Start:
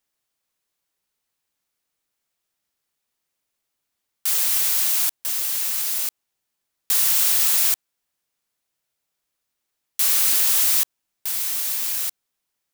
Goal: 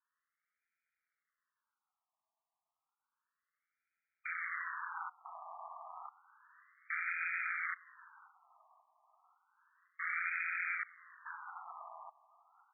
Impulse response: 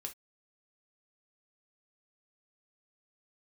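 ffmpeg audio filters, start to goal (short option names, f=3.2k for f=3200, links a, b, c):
-filter_complex "[0:a]aeval=exprs='val(0)*sin(2*PI*86*n/s)':c=same,highpass=f=230:t=q:w=0.5412,highpass=f=230:t=q:w=1.307,lowpass=f=3.3k:t=q:w=0.5176,lowpass=f=3.3k:t=q:w=0.7071,lowpass=f=3.3k:t=q:w=1.932,afreqshift=80,asplit=2[a][b];[b]aecho=0:1:533|1066|1599|2132|2665:0.0944|0.0557|0.0329|0.0194|0.0114[c];[a][c]amix=inputs=2:normalize=0,afftfilt=real='re*between(b*sr/1024,860*pow(1800/860,0.5+0.5*sin(2*PI*0.31*pts/sr))/1.41,860*pow(1800/860,0.5+0.5*sin(2*PI*0.31*pts/sr))*1.41)':imag='im*between(b*sr/1024,860*pow(1800/860,0.5+0.5*sin(2*PI*0.31*pts/sr))/1.41,860*pow(1800/860,0.5+0.5*sin(2*PI*0.31*pts/sr))*1.41)':win_size=1024:overlap=0.75,volume=4dB"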